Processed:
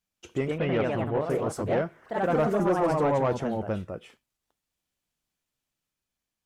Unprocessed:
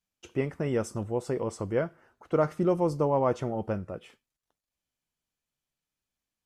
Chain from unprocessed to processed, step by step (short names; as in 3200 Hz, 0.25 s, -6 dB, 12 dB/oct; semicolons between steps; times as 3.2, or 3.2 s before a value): echoes that change speed 0.154 s, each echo +2 st, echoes 3; 0.58–1.3 EQ curve 360 Hz 0 dB, 2800 Hz +6 dB, 7200 Hz -25 dB; soft clip -18.5 dBFS, distortion -16 dB; gain +1.5 dB